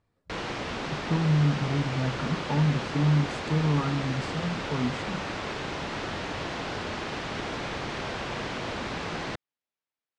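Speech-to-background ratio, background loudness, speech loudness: 5.0 dB, −33.0 LKFS, −28.0 LKFS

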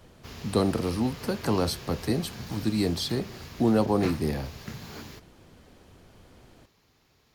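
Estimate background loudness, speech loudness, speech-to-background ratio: −41.0 LKFS, −28.0 LKFS, 13.0 dB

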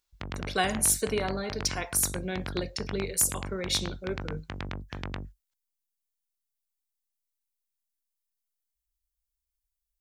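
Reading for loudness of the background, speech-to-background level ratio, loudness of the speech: −39.0 LKFS, 10.0 dB, −29.0 LKFS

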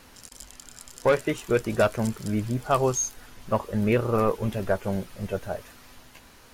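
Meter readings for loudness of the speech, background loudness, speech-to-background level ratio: −26.5 LKFS, −45.5 LKFS, 19.0 dB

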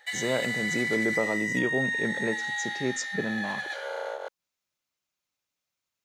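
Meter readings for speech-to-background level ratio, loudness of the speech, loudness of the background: −1.5 dB, −31.5 LKFS, −30.0 LKFS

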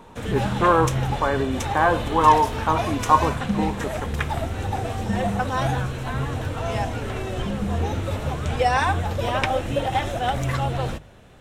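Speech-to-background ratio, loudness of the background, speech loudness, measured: 3.5 dB, −25.5 LKFS, −22.0 LKFS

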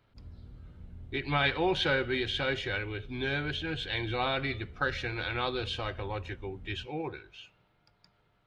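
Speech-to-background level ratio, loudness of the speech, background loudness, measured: 17.5 dB, −32.0 LKFS, −49.5 LKFS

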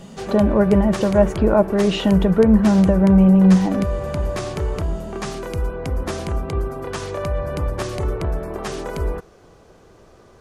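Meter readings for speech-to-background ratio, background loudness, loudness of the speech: 10.5 dB, −26.5 LKFS, −16.0 LKFS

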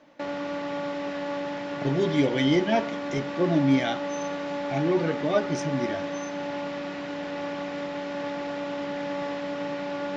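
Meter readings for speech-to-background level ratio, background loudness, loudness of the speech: 6.0 dB, −32.0 LKFS, −26.0 LKFS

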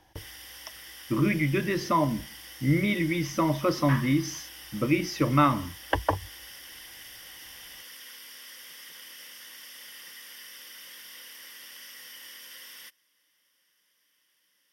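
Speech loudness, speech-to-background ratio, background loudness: −26.5 LKFS, 17.0 dB, −43.5 LKFS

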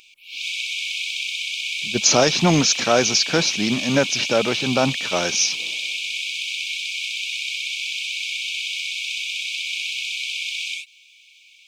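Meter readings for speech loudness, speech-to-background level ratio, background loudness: −19.0 LKFS, 5.5 dB, −24.5 LKFS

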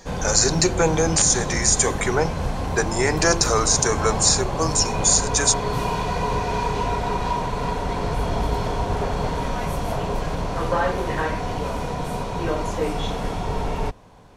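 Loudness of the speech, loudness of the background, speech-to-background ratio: −19.5 LKFS, −26.0 LKFS, 6.5 dB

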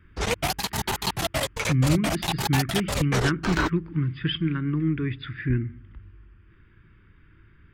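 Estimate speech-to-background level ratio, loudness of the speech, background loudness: 1.0 dB, −26.5 LKFS, −27.5 LKFS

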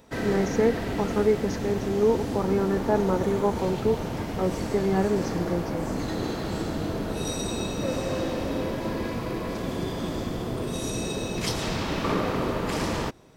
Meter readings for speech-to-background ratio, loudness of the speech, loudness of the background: 3.5 dB, −26.5 LKFS, −30.0 LKFS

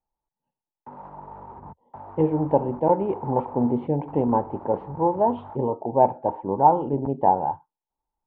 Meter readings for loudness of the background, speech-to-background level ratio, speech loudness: −42.5 LKFS, 19.0 dB, −23.5 LKFS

